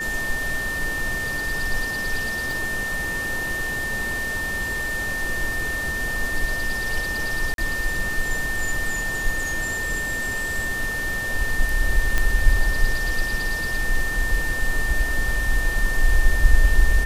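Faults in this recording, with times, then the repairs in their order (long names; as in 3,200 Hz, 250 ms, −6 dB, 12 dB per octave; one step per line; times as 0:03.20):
whistle 1,800 Hz −25 dBFS
0:02.51: click
0:07.54–0:07.58: drop-out 42 ms
0:12.18: click −7 dBFS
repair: click removal
notch filter 1,800 Hz, Q 30
repair the gap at 0:07.54, 42 ms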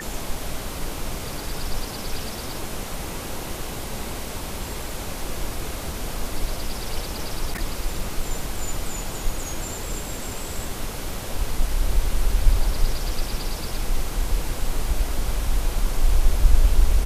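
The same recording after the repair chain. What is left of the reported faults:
0:02.51: click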